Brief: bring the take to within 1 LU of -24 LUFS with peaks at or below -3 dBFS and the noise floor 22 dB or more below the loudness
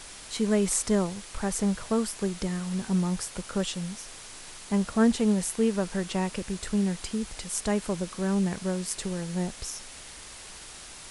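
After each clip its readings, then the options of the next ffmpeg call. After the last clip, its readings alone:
noise floor -45 dBFS; noise floor target -51 dBFS; loudness -28.5 LUFS; peak -9.5 dBFS; loudness target -24.0 LUFS
-> -af "afftdn=nr=6:nf=-45"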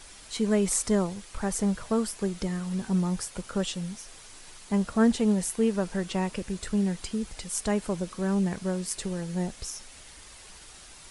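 noise floor -49 dBFS; noise floor target -51 dBFS
-> -af "afftdn=nr=6:nf=-49"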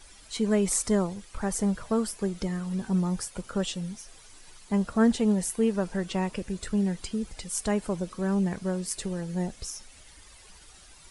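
noise floor -52 dBFS; loudness -29.0 LUFS; peak -9.5 dBFS; loudness target -24.0 LUFS
-> -af "volume=5dB"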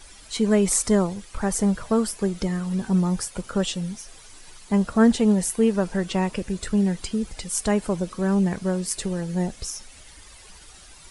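loudness -24.0 LUFS; peak -4.5 dBFS; noise floor -47 dBFS

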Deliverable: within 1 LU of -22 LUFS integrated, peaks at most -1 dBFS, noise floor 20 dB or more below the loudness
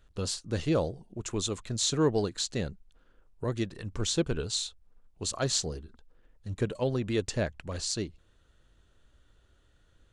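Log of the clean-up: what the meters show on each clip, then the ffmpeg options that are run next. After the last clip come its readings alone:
loudness -31.5 LUFS; peak -11.5 dBFS; loudness target -22.0 LUFS
-> -af "volume=9.5dB"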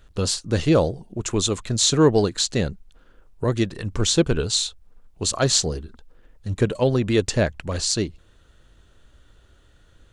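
loudness -22.0 LUFS; peak -2.0 dBFS; noise floor -55 dBFS

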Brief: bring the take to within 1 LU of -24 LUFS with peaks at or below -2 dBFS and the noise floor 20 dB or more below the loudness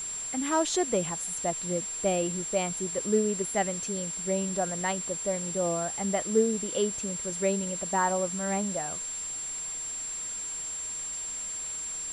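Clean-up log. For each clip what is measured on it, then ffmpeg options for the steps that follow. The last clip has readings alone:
steady tone 7400 Hz; tone level -33 dBFS; noise floor -36 dBFS; noise floor target -49 dBFS; loudness -29.0 LUFS; peak -13.0 dBFS; loudness target -24.0 LUFS
-> -af "bandreject=f=7.4k:w=30"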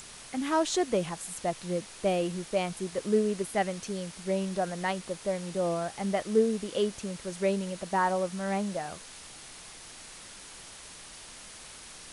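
steady tone none; noise floor -48 dBFS; noise floor target -51 dBFS
-> -af "afftdn=nr=6:nf=-48"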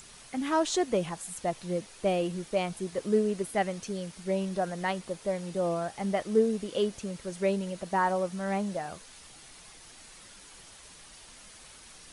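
noise floor -52 dBFS; loudness -31.0 LUFS; peak -13.5 dBFS; loudness target -24.0 LUFS
-> -af "volume=7dB"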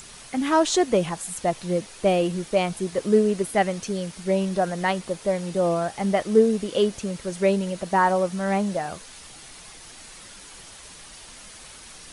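loudness -24.0 LUFS; peak -6.5 dBFS; noise floor -45 dBFS

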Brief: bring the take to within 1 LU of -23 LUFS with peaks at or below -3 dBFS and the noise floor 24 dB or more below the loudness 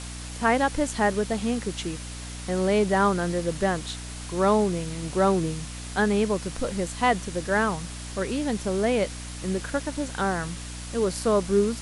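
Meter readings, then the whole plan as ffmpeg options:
hum 60 Hz; harmonics up to 300 Hz; hum level -36 dBFS; noise floor -37 dBFS; noise floor target -50 dBFS; loudness -26.0 LUFS; peak -9.0 dBFS; loudness target -23.0 LUFS
-> -af "bandreject=f=60:t=h:w=4,bandreject=f=120:t=h:w=4,bandreject=f=180:t=h:w=4,bandreject=f=240:t=h:w=4,bandreject=f=300:t=h:w=4"
-af "afftdn=nr=13:nf=-37"
-af "volume=3dB"

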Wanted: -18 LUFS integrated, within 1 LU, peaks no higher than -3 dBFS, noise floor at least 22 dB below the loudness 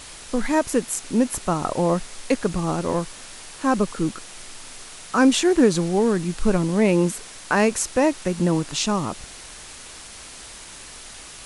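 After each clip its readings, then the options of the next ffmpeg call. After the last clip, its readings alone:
noise floor -41 dBFS; noise floor target -44 dBFS; loudness -22.0 LUFS; peak -4.5 dBFS; loudness target -18.0 LUFS
-> -af "afftdn=nr=6:nf=-41"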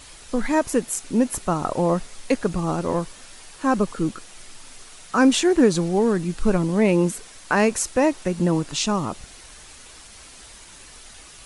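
noise floor -45 dBFS; loudness -22.0 LUFS; peak -5.0 dBFS; loudness target -18.0 LUFS
-> -af "volume=4dB,alimiter=limit=-3dB:level=0:latency=1"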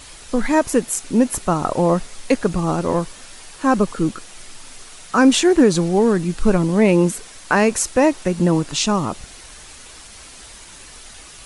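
loudness -18.0 LUFS; peak -3.0 dBFS; noise floor -41 dBFS

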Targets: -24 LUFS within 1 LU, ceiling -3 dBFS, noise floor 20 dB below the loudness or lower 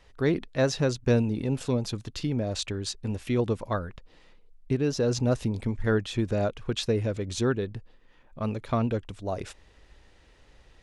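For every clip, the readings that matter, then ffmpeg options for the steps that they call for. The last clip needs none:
loudness -28.5 LUFS; peak -12.5 dBFS; loudness target -24.0 LUFS
-> -af "volume=4.5dB"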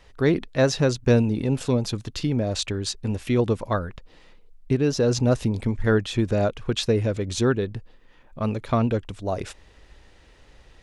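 loudness -24.0 LUFS; peak -8.0 dBFS; noise floor -54 dBFS

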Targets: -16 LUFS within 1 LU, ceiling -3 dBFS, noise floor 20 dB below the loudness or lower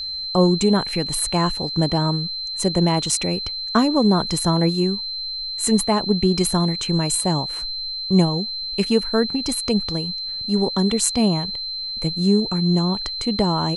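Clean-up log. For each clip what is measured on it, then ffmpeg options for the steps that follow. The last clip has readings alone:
steady tone 4100 Hz; tone level -26 dBFS; loudness -20.5 LUFS; peak -3.5 dBFS; loudness target -16.0 LUFS
-> -af "bandreject=f=4.1k:w=30"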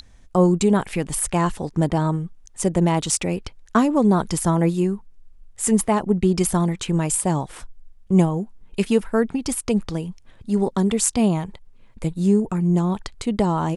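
steady tone none; loudness -21.5 LUFS; peak -4.0 dBFS; loudness target -16.0 LUFS
-> -af "volume=5.5dB,alimiter=limit=-3dB:level=0:latency=1"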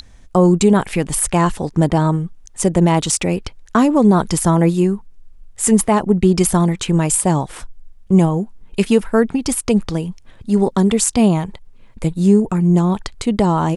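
loudness -16.5 LUFS; peak -3.0 dBFS; noise floor -43 dBFS

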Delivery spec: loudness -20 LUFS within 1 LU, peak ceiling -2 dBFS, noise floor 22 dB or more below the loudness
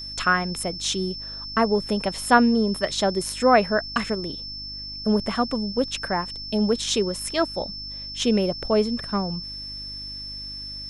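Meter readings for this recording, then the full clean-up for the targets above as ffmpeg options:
hum 50 Hz; harmonics up to 300 Hz; hum level -42 dBFS; steady tone 5300 Hz; tone level -33 dBFS; loudness -24.0 LUFS; peak -3.5 dBFS; loudness target -20.0 LUFS
-> -af "bandreject=f=50:t=h:w=4,bandreject=f=100:t=h:w=4,bandreject=f=150:t=h:w=4,bandreject=f=200:t=h:w=4,bandreject=f=250:t=h:w=4,bandreject=f=300:t=h:w=4"
-af "bandreject=f=5.3k:w=30"
-af "volume=4dB,alimiter=limit=-2dB:level=0:latency=1"

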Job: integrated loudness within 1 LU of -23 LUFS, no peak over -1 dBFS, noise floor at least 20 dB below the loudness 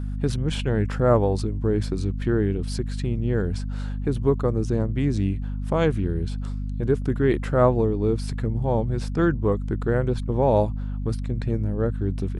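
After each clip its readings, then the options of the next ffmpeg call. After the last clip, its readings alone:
hum 50 Hz; harmonics up to 250 Hz; hum level -26 dBFS; loudness -24.5 LUFS; peak -6.5 dBFS; loudness target -23.0 LUFS
-> -af "bandreject=f=50:t=h:w=6,bandreject=f=100:t=h:w=6,bandreject=f=150:t=h:w=6,bandreject=f=200:t=h:w=6,bandreject=f=250:t=h:w=6"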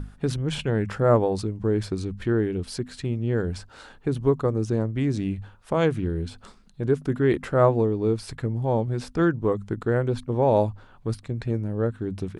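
hum none; loudness -25.5 LUFS; peak -7.5 dBFS; loudness target -23.0 LUFS
-> -af "volume=2.5dB"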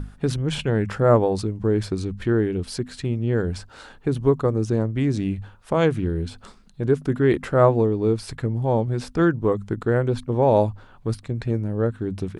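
loudness -23.0 LUFS; peak -5.0 dBFS; noise floor -49 dBFS

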